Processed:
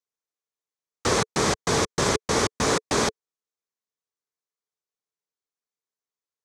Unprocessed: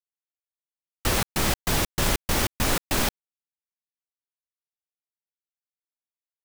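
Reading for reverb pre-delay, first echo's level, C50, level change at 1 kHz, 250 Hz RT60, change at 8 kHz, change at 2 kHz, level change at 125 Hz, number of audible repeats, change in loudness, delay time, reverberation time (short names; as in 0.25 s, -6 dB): none, none, none, +4.0 dB, none, +1.5 dB, +1.0 dB, -1.0 dB, none, +1.0 dB, none, none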